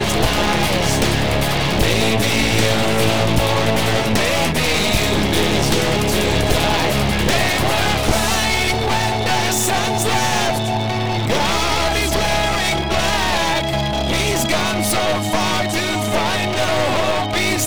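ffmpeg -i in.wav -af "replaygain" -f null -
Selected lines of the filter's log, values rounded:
track_gain = -0.0 dB
track_peak = 0.495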